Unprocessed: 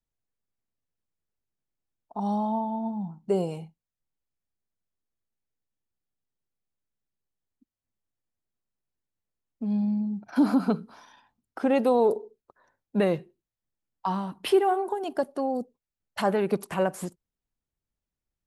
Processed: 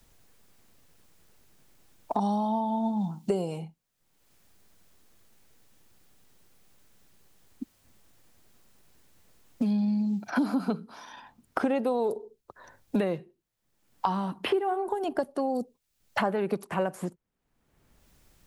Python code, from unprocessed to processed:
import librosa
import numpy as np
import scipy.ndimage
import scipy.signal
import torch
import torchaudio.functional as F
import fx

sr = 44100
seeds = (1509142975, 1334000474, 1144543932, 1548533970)

y = fx.band_squash(x, sr, depth_pct=100)
y = y * 10.0 ** (-2.0 / 20.0)